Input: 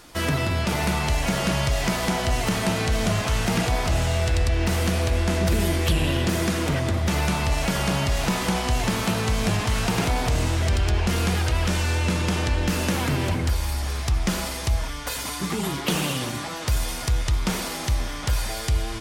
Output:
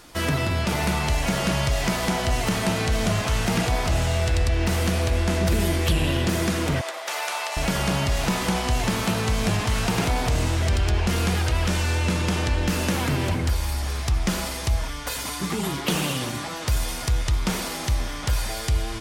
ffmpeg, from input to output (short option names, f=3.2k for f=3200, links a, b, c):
-filter_complex "[0:a]asettb=1/sr,asplit=3[a][b][c];[a]atrim=end=6.814[d];[b]atrim=start=6.81:end=7.57,asetpts=PTS-STARTPTS,afade=t=in:d=0.004:c=qsin,afade=t=out:st=0.756:d=0.004:c=qsin,highpass=f=570:w=0.5412,highpass=f=570:w=1.3066[e];[c]atrim=start=7.566[f];[d][e]acrossfade=d=0.004:c1=hsin:c2=qsin[g];[g][f]acrossfade=d=0.004:c1=qsin:c2=hsin"